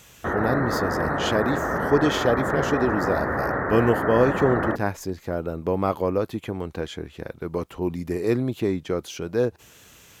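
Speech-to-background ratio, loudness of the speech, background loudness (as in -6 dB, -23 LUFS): -0.5 dB, -26.0 LUFS, -25.5 LUFS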